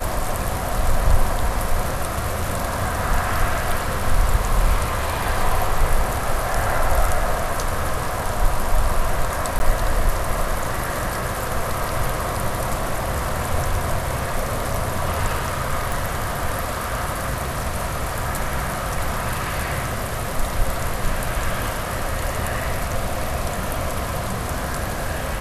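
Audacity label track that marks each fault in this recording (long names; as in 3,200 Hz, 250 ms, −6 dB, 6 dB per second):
9.590000	9.600000	drop-out 11 ms
15.920000	15.920000	click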